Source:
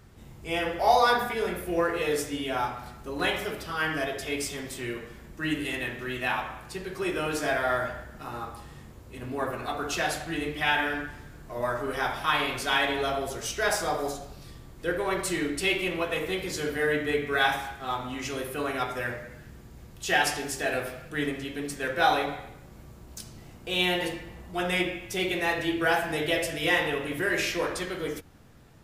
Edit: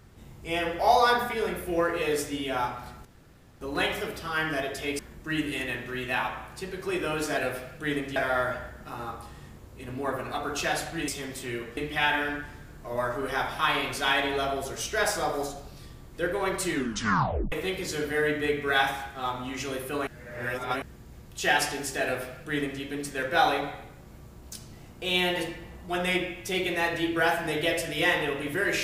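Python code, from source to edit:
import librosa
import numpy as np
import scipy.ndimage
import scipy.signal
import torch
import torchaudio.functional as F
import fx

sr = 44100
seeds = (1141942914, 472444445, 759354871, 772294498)

y = fx.edit(x, sr, fx.insert_room_tone(at_s=3.05, length_s=0.56),
    fx.move(start_s=4.43, length_s=0.69, to_s=10.42),
    fx.tape_stop(start_s=15.38, length_s=0.79),
    fx.reverse_span(start_s=18.72, length_s=0.75),
    fx.duplicate(start_s=20.68, length_s=0.79, to_s=7.5), tone=tone)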